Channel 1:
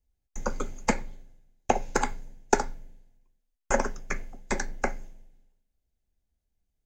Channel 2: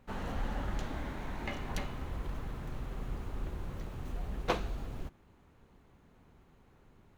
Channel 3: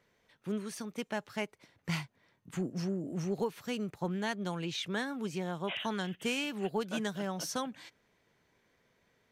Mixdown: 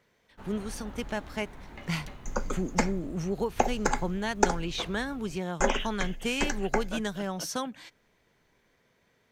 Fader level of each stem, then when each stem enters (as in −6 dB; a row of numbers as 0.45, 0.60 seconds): −1.0, −7.0, +3.0 decibels; 1.90, 0.30, 0.00 seconds